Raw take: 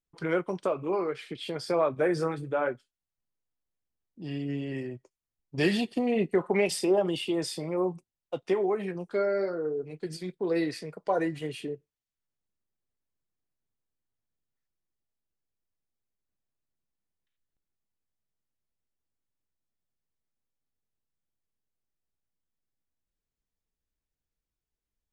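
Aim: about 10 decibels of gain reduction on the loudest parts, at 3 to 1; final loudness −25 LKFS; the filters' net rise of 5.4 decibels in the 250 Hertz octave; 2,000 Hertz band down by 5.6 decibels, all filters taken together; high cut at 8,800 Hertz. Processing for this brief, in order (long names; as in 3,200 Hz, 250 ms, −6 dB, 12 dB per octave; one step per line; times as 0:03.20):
low-pass filter 8,800 Hz
parametric band 250 Hz +8 dB
parametric band 2,000 Hz −7.5 dB
downward compressor 3 to 1, threshold −31 dBFS
level +9 dB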